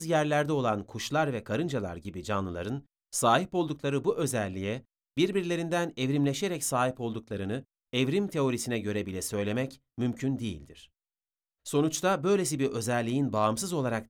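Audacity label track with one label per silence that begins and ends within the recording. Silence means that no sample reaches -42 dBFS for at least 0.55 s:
10.840000	11.660000	silence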